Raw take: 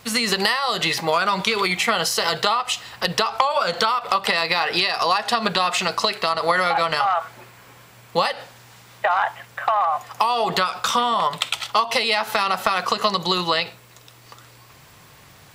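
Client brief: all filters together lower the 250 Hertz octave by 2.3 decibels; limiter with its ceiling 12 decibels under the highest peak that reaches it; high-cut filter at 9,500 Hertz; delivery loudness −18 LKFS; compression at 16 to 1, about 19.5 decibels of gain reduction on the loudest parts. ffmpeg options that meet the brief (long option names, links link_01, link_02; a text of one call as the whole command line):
ffmpeg -i in.wav -af "lowpass=9500,equalizer=frequency=250:width_type=o:gain=-3.5,acompressor=threshold=-33dB:ratio=16,volume=22dB,alimiter=limit=-6dB:level=0:latency=1" out.wav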